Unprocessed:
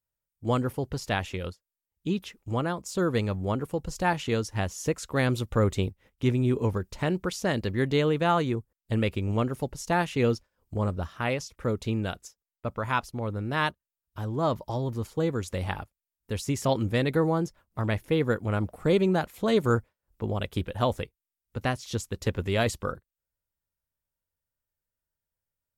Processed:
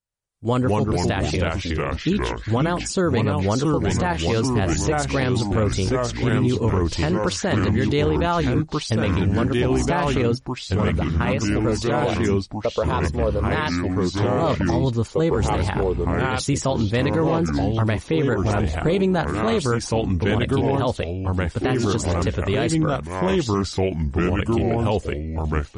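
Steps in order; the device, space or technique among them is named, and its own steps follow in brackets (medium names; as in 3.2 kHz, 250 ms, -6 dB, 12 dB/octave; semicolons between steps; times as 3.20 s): 11.83–13.43 s: graphic EQ 125/250/500/2000/4000 Hz -8/-4/+10/-11/+4 dB; ever faster or slower copies 113 ms, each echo -3 st, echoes 3; low-bitrate web radio (level rider gain up to 11 dB; peak limiter -11.5 dBFS, peak gain reduction 9.5 dB; MP3 40 kbps 44.1 kHz)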